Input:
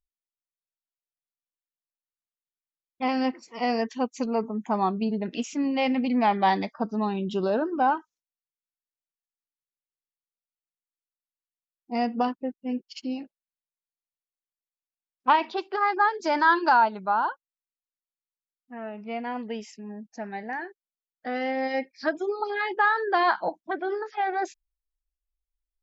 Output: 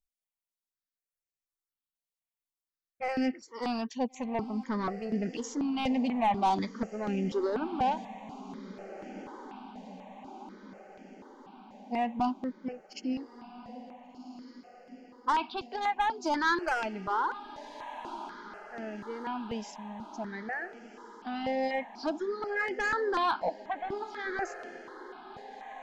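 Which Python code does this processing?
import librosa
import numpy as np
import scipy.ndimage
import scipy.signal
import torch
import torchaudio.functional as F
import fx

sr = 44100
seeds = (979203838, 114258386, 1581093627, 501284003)

y = 10.0 ** (-20.0 / 20.0) * np.tanh(x / 10.0 ** (-20.0 / 20.0))
y = fx.echo_diffused(y, sr, ms=1459, feedback_pct=60, wet_db=-14.0)
y = fx.phaser_held(y, sr, hz=4.1, low_hz=350.0, high_hz=3800.0)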